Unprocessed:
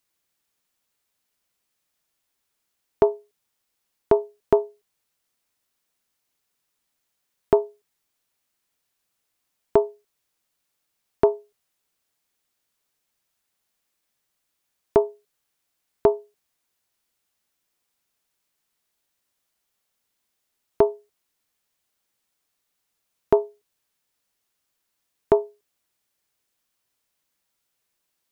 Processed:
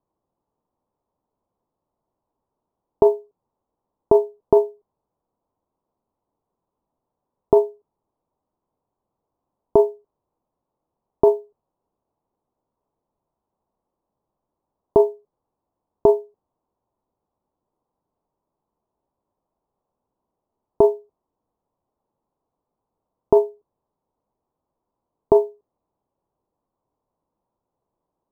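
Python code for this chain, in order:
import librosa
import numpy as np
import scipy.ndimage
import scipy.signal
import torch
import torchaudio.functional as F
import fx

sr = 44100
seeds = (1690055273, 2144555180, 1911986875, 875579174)

p1 = scipy.signal.sosfilt(scipy.signal.ellip(4, 1.0, 70, 1000.0, 'lowpass', fs=sr, output='sos'), x)
p2 = fx.over_compress(p1, sr, threshold_db=-19.0, ratio=-0.5)
p3 = p1 + (p2 * librosa.db_to_amplitude(1.5))
y = fx.quant_float(p3, sr, bits=6)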